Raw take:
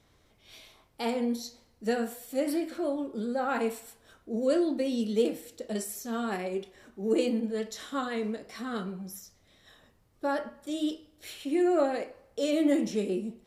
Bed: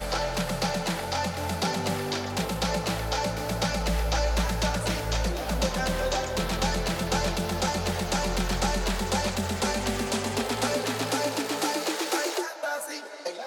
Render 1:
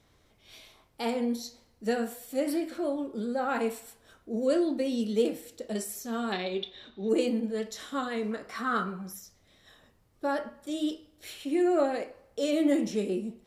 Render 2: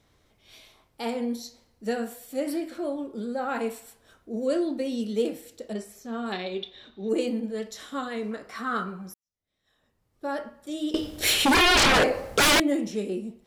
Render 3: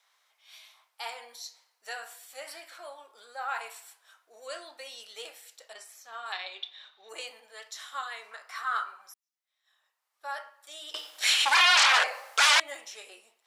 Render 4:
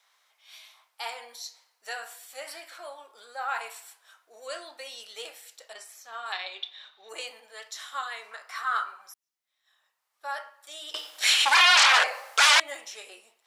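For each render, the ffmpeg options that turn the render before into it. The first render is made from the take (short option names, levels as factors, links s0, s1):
-filter_complex "[0:a]asettb=1/sr,asplit=3[s0][s1][s2];[s0]atrim=end=6.324[s3];[s1]atrim=start=6.32:end=7.09,asetpts=PTS-STARTPTS,afade=t=in:d=0.004:c=qsin,afade=t=out:st=0.766:d=0.004:c=qsin,lowpass=f=3700:t=q:w=15[s4];[s2]atrim=start=7.086[s5];[s3][s4]acrossfade=d=0.004:c1=hsin:c2=qsin[s6];[s6][s5]acrossfade=d=0.004:c1=qsin:c2=hsin,asettb=1/sr,asplit=3[s7][s8][s9];[s7]atrim=end=8.314[s10];[s8]atrim=start=8.31:end=9.13,asetpts=PTS-STARTPTS,afade=t=in:d=0.004:c=qsin,afade=t=out:st=0.816:d=0.004:c=qsin,equalizer=f=1300:t=o:w=0.93:g=13[s11];[s9]atrim=start=9.126[s12];[s10][s11]acrossfade=d=0.004:c1=hsin:c2=qsin[s13];[s13][s12]acrossfade=d=0.004:c1=qsin:c2=hsin"
-filter_complex "[0:a]asettb=1/sr,asplit=3[s0][s1][s2];[s0]atrim=end=5.734[s3];[s1]atrim=start=5.73:end=6.26,asetpts=PTS-STARTPTS,afade=t=in:d=0.004:c=qsin,afade=t=out:st=0.526:d=0.004:c=qsin,lowpass=f=2400:p=1[s4];[s2]atrim=start=6.256[s5];[s3][s4]acrossfade=d=0.004:c1=hsin:c2=qsin[s6];[s6][s5]acrossfade=d=0.004:c1=qsin:c2=hsin,asettb=1/sr,asplit=3[s7][s8][s9];[s7]atrim=end=10.944[s10];[s8]atrim=start=10.94:end=12.6,asetpts=PTS-STARTPTS,afade=t=in:d=0.004:c=qsin,afade=t=out:st=1.656:d=0.004:c=qsin,aeval=exprs='0.168*sin(PI/2*8.91*val(0)/0.168)':c=same[s11];[s9]atrim=start=12.596[s12];[s10][s11]acrossfade=d=0.004:c1=hsin:c2=qsin[s13];[s13][s12]acrossfade=d=0.004:c1=qsin:c2=hsin,asplit=2[s14][s15];[s14]atrim=end=9.14,asetpts=PTS-STARTPTS,afade=t=out:st=9.136:d=0.004:c=hsin[s16];[s15]atrim=start=9.14,asetpts=PTS-STARTPTS,afade=t=in:d=1.26:c=qua[s17];[s16][s17]concat=n=2:v=0:a=1"
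-filter_complex "[0:a]highpass=f=850:w=0.5412,highpass=f=850:w=1.3066,acrossover=split=9300[s0][s1];[s1]acompressor=threshold=0.002:ratio=4:attack=1:release=60[s2];[s0][s2]amix=inputs=2:normalize=0"
-af "volume=1.33"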